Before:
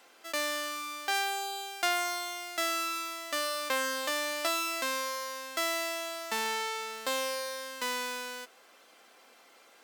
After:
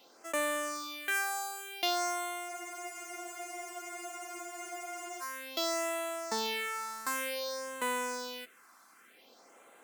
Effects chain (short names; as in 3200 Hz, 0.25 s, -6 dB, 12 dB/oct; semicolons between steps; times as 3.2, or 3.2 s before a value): phaser stages 4, 0.54 Hz, lowest notch 480–4900 Hz; spectral freeze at 2.51, 2.70 s; gain +2 dB